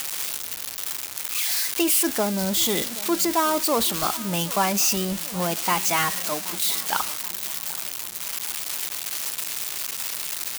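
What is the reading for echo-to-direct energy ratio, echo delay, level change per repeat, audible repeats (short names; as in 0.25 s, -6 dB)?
-17.5 dB, 0.776 s, -5.5 dB, 3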